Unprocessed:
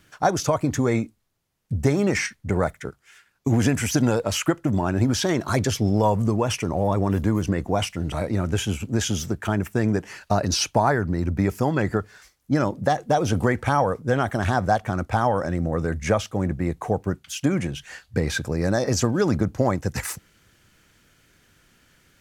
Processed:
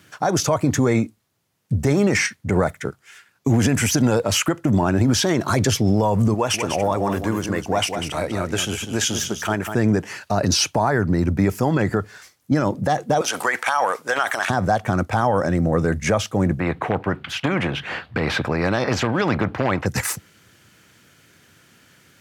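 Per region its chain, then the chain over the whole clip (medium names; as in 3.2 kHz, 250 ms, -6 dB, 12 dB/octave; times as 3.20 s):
6.34–9.75 s: peaking EQ 130 Hz -10 dB 3 oct + delay 196 ms -8 dB
13.21–14.50 s: high-pass 1 kHz + transient shaper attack +7 dB, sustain +11 dB
16.60–19.86 s: hard clipper -11.5 dBFS + distance through air 480 m + spectrum-flattening compressor 2:1
whole clip: high-pass 87 Hz 24 dB/octave; peak limiter -15 dBFS; trim +6 dB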